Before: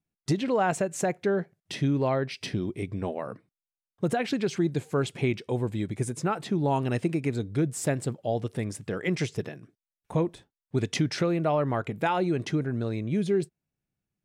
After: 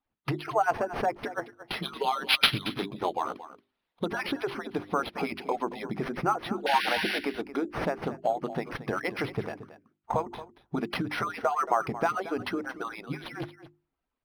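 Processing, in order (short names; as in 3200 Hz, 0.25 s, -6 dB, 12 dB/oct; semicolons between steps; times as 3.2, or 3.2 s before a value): median-filter separation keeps percussive; compressor 6:1, threshold -33 dBFS, peak gain reduction 11 dB; band shelf 1000 Hz +8.5 dB 1.2 oct; notches 50/100/150/200/250/300/350/400 Hz; 1.82–4.06 resonant high shelf 2700 Hz +11.5 dB, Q 3; 6.66–7.19 painted sound noise 1400–5900 Hz -35 dBFS; echo 0.227 s -14.5 dB; decimation joined by straight lines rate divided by 6×; gain +6.5 dB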